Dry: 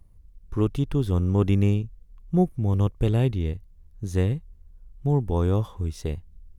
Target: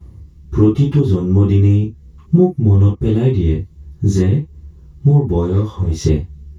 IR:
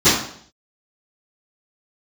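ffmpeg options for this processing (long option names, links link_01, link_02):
-filter_complex "[0:a]acompressor=threshold=-31dB:ratio=10,asettb=1/sr,asplit=3[link_01][link_02][link_03];[link_01]atrim=end=5.414[link_04];[link_02]atrim=start=5.41:end=6.01,asetpts=PTS-STARTPTS,afade=type=in:duration=0.004:curve=qsin,afade=type=out:start_time=0.596:duration=0.004:curve=qsin,volume=31dB,asoftclip=hard,volume=-31dB[link_05];[link_03]atrim=start=6.006[link_06];[link_04][link_05]acrossfade=duration=0.004:curve1=hsin:curve2=qsin[link_07];[link_07][link_06]acrossfade=duration=0.004:curve1=qsin:curve2=hsin[link_08];[1:a]atrim=start_sample=2205,atrim=end_sample=3528[link_09];[link_08][link_09]afir=irnorm=-1:irlink=0,volume=-6dB"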